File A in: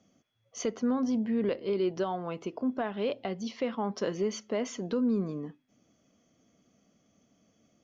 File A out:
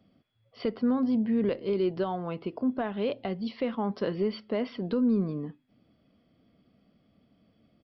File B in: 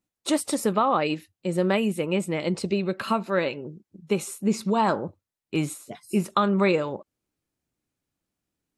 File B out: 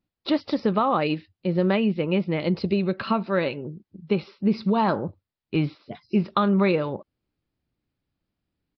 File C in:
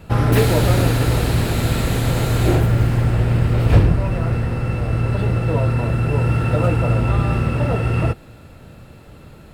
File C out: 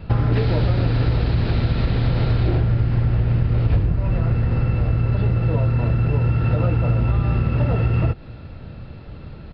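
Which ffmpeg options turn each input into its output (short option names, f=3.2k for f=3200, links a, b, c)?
-af "lowshelf=f=170:g=8.5,acompressor=threshold=-15dB:ratio=6,aresample=11025,aresample=44100"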